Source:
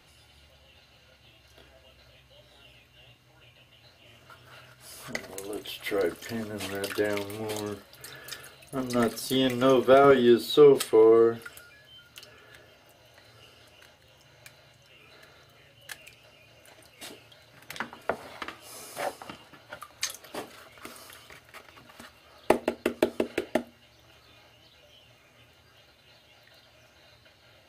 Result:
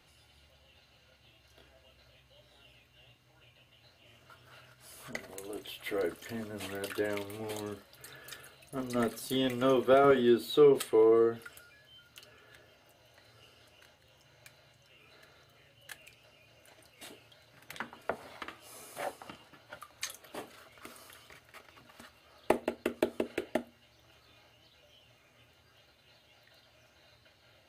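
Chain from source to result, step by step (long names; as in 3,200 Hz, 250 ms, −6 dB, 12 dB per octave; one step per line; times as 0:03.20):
dynamic equaliser 5,300 Hz, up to −6 dB, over −56 dBFS, Q 2.8
level −5.5 dB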